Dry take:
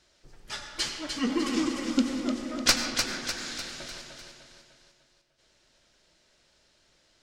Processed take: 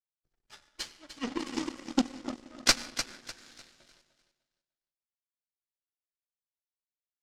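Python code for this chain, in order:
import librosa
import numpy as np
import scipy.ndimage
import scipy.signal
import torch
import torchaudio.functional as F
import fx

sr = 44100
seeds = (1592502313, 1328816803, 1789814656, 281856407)

y = fx.power_curve(x, sr, exponent=2.0)
y = np.clip(y, -10.0 ** (-15.5 / 20.0), 10.0 ** (-15.5 / 20.0))
y = scipy.signal.sosfilt(scipy.signal.butter(2, 10000.0, 'lowpass', fs=sr, output='sos'), y)
y = y * 10.0 ** (4.0 / 20.0)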